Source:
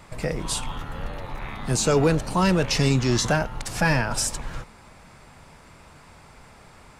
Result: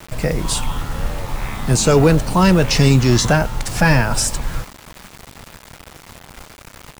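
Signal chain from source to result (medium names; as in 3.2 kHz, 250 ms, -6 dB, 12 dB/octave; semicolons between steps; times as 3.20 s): bass shelf 160 Hz +5 dB; bit crusher 7-bit; trim +6 dB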